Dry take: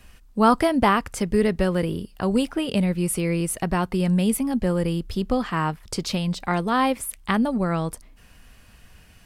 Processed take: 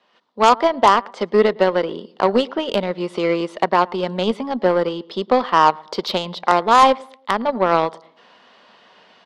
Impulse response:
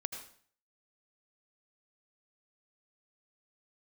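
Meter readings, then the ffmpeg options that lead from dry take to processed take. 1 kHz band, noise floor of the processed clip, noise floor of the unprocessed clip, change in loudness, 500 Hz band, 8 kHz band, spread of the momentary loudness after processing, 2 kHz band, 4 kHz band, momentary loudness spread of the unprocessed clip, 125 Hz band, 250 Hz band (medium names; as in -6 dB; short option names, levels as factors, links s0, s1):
+9.5 dB, -54 dBFS, -51 dBFS, +5.0 dB, +7.5 dB, -7.0 dB, 10 LU, +4.5 dB, +7.0 dB, 8 LU, -7.5 dB, -2.5 dB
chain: -filter_complex "[0:a]dynaudnorm=f=120:g=3:m=4.47,highpass=f=270:w=0.5412,highpass=f=270:w=1.3066,equalizer=f=290:t=q:w=4:g=-9,equalizer=f=590:t=q:w=4:g=3,equalizer=f=970:t=q:w=4:g=6,equalizer=f=1600:t=q:w=4:g=-5,equalizer=f=2500:t=q:w=4:g=-9,equalizer=f=3600:t=q:w=4:g=3,lowpass=f=4200:w=0.5412,lowpass=f=4200:w=1.3066,asplit=2[s0][s1];[s1]adelay=110,lowpass=f=1700:p=1,volume=0.112,asplit=2[s2][s3];[s3]adelay=110,lowpass=f=1700:p=1,volume=0.38,asplit=2[s4][s5];[s5]adelay=110,lowpass=f=1700:p=1,volume=0.38[s6];[s2][s4][s6]amix=inputs=3:normalize=0[s7];[s0][s7]amix=inputs=2:normalize=0,aeval=exprs='1.06*(cos(1*acos(clip(val(0)/1.06,-1,1)))-cos(1*PI/2))+0.106*(cos(4*acos(clip(val(0)/1.06,-1,1)))-cos(4*PI/2))+0.168*(cos(5*acos(clip(val(0)/1.06,-1,1)))-cos(5*PI/2))+0.0668*(cos(6*acos(clip(val(0)/1.06,-1,1)))-cos(6*PI/2))+0.168*(cos(7*acos(clip(val(0)/1.06,-1,1)))-cos(7*PI/2))':c=same,volume=0.891"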